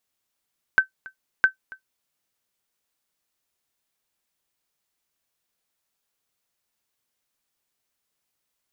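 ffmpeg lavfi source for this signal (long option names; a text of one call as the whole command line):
ffmpeg -f lavfi -i "aevalsrc='0.447*(sin(2*PI*1540*mod(t,0.66))*exp(-6.91*mod(t,0.66)/0.11)+0.0708*sin(2*PI*1540*max(mod(t,0.66)-0.28,0))*exp(-6.91*max(mod(t,0.66)-0.28,0)/0.11))':duration=1.32:sample_rate=44100" out.wav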